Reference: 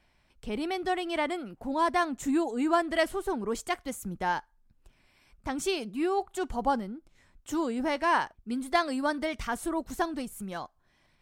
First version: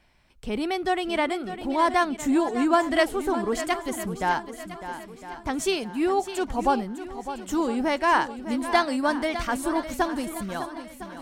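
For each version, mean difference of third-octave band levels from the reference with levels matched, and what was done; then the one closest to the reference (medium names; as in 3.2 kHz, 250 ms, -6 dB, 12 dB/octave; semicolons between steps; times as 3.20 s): 4.0 dB: shuffle delay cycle 1008 ms, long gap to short 1.5:1, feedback 37%, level -11.5 dB; trim +4.5 dB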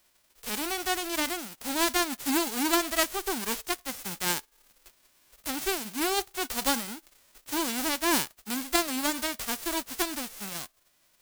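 11.5 dB: formants flattened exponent 0.1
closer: first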